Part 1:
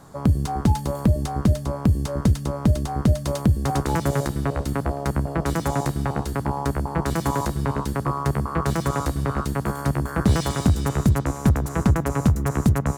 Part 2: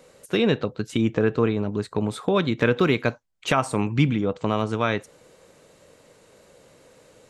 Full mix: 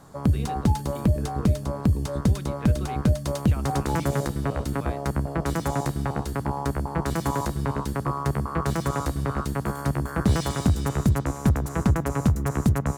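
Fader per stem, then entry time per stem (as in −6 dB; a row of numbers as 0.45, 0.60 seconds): −2.5, −18.5 decibels; 0.00, 0.00 seconds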